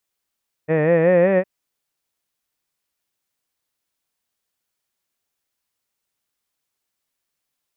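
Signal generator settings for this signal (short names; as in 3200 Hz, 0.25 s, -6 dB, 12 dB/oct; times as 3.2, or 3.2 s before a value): formant-synthesis vowel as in head, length 0.76 s, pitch 151 Hz, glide +4.5 st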